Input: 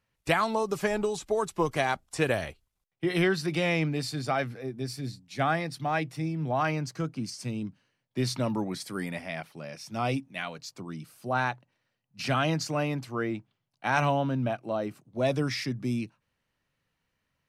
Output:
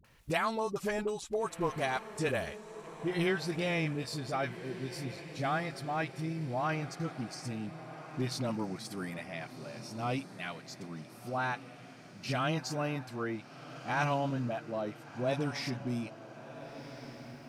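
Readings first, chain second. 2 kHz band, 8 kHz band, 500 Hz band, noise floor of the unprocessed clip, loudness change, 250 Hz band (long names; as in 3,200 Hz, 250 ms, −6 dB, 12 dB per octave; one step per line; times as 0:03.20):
−5.0 dB, −5.0 dB, −5.0 dB, −81 dBFS, −5.5 dB, −5.0 dB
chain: upward compression, threshold −40 dBFS
all-pass dispersion highs, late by 46 ms, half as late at 460 Hz
on a send: feedback delay with all-pass diffusion 1,435 ms, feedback 53%, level −13 dB
on the sum: level −5.5 dB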